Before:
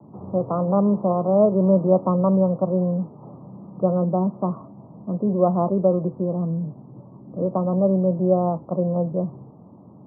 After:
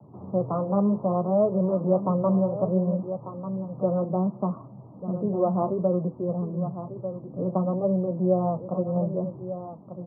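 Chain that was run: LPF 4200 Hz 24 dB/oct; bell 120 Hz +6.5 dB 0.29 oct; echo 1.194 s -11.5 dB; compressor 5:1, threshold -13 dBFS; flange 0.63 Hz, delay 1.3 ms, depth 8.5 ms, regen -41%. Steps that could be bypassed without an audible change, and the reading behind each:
LPF 4200 Hz: input band ends at 1100 Hz

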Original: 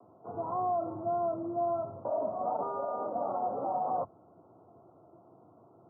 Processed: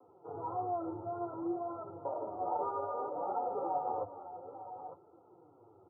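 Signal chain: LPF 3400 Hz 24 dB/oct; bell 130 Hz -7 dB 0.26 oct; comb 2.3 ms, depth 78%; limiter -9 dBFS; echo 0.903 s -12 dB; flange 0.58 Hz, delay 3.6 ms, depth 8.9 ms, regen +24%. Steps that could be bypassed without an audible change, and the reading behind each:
LPF 3400 Hz: input band ends at 1400 Hz; limiter -9 dBFS: input peak -20.5 dBFS

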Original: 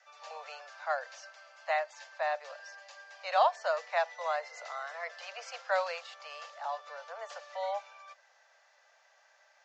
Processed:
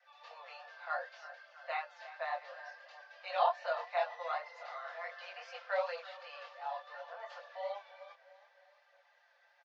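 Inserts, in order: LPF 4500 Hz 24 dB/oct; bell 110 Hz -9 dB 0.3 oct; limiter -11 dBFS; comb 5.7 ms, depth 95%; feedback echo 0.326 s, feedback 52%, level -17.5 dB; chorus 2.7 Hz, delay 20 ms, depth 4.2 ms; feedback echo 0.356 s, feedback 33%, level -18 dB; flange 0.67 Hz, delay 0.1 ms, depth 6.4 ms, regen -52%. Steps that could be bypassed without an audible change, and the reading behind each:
bell 110 Hz: input band starts at 430 Hz; limiter -11 dBFS: input peak -13.5 dBFS

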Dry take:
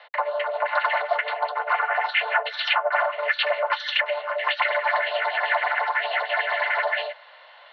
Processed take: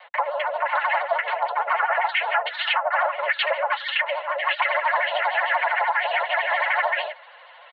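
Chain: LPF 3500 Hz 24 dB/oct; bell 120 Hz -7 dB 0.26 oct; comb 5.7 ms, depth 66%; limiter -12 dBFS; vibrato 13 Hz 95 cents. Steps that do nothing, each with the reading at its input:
bell 120 Hz: input band starts at 430 Hz

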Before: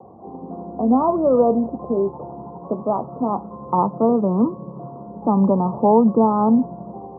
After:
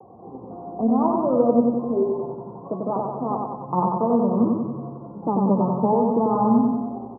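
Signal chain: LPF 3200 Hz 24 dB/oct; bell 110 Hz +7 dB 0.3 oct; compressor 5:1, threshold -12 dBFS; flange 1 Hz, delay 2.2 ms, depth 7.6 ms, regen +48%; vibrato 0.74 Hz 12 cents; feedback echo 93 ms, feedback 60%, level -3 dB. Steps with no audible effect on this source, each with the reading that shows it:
LPF 3200 Hz: input band ends at 1300 Hz

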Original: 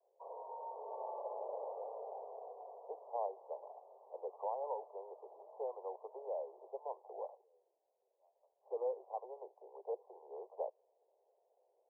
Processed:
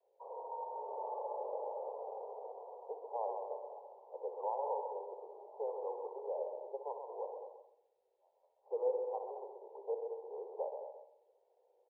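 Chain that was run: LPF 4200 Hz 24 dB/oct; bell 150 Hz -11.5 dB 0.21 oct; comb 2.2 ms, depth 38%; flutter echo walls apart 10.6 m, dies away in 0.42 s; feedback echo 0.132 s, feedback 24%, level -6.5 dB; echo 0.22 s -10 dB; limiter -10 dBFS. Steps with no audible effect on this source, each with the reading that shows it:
LPF 4200 Hz: input band ends at 1100 Hz; bell 150 Hz: input band starts at 340 Hz; limiter -10 dBFS: input peak -24.5 dBFS

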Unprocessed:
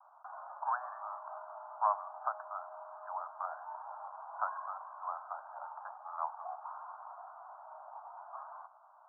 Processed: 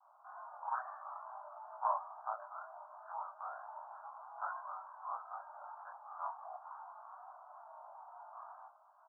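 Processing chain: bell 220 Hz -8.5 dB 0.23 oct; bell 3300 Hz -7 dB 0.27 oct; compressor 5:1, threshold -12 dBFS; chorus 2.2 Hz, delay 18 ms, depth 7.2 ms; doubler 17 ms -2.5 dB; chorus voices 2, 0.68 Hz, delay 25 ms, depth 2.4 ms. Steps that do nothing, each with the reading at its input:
bell 220 Hz: input band starts at 510 Hz; bell 3300 Hz: input band ends at 1700 Hz; compressor, threshold -12 dBFS: input peak -17.0 dBFS

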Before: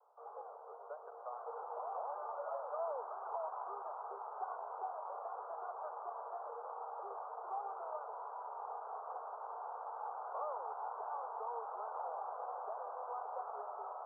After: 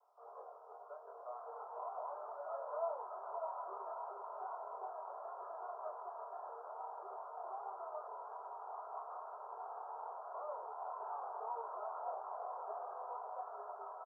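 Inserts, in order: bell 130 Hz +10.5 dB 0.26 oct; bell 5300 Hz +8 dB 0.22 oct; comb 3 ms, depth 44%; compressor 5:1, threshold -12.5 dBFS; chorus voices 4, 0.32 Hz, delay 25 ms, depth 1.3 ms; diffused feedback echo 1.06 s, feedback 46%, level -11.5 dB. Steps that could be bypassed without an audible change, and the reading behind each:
bell 130 Hz: input band starts at 340 Hz; bell 5300 Hz: input band ends at 1600 Hz; compressor, threshold -12.5 dBFS: input peak -27.5 dBFS

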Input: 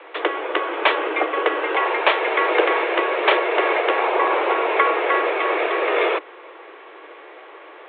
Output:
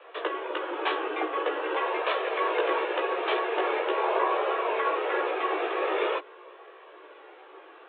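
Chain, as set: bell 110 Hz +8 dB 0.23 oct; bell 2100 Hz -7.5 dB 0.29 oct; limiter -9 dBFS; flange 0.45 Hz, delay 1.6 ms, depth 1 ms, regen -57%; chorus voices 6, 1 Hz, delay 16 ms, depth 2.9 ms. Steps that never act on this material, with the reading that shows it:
bell 110 Hz: input band starts at 270 Hz

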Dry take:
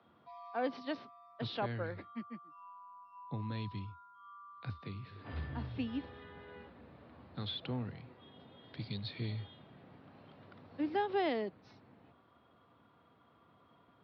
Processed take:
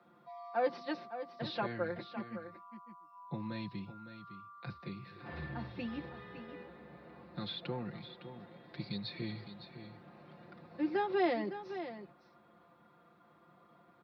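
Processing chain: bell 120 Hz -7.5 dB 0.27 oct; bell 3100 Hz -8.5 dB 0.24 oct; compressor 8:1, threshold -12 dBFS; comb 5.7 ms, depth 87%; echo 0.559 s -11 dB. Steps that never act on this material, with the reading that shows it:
compressor, threshold -12 dBFS: input peak -24.0 dBFS

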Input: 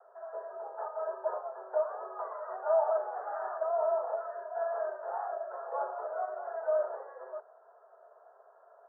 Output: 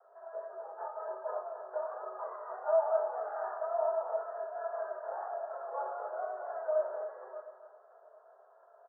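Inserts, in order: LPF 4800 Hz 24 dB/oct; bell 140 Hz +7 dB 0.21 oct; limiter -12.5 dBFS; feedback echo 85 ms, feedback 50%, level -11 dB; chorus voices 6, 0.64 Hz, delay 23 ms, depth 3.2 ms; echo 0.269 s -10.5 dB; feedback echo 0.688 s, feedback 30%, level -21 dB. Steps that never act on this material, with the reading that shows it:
LPF 4800 Hz: input band ends at 1700 Hz; bell 140 Hz: input band starts at 360 Hz; limiter -12.5 dBFS: input peak -18.5 dBFS

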